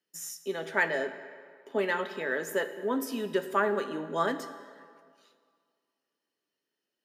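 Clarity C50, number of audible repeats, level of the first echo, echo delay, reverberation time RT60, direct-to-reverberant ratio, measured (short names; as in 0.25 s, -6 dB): 11.5 dB, none, none, none, 2.1 s, 10.0 dB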